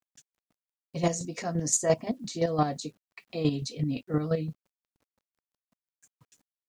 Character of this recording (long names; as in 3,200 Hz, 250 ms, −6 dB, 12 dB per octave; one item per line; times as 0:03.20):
chopped level 5.8 Hz, depth 60%, duty 25%
a quantiser's noise floor 12 bits, dither none